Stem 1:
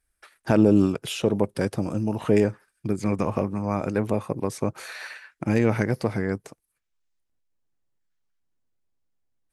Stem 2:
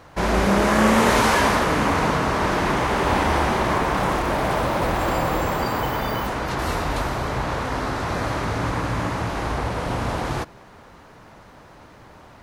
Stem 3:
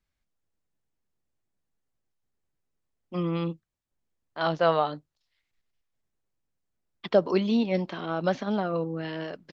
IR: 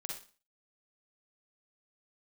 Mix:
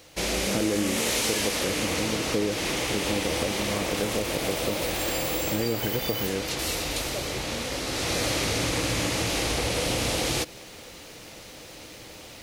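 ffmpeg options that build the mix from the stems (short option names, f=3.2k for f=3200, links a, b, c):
-filter_complex "[0:a]adelay=50,volume=-5.5dB[a];[1:a]aexciter=amount=4.6:drive=6.5:freq=2.2k,volume=-2dB,afade=t=in:st=7.85:d=0.46:silence=0.421697[b];[2:a]volume=-18.5dB[c];[a][b][c]amix=inputs=3:normalize=0,equalizer=f=315:t=o:w=0.33:g=6,equalizer=f=500:t=o:w=0.33:g=8,equalizer=f=1k:t=o:w=0.33:g=-6,acompressor=threshold=-23dB:ratio=4"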